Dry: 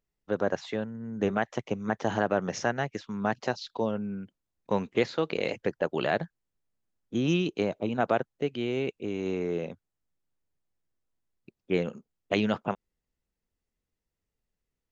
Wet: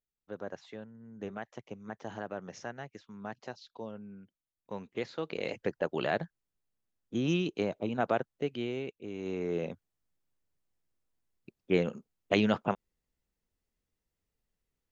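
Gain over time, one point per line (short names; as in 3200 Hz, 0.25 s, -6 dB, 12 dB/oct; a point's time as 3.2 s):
4.75 s -13 dB
5.64 s -3.5 dB
8.61 s -3.5 dB
8.95 s -10 dB
9.69 s 0 dB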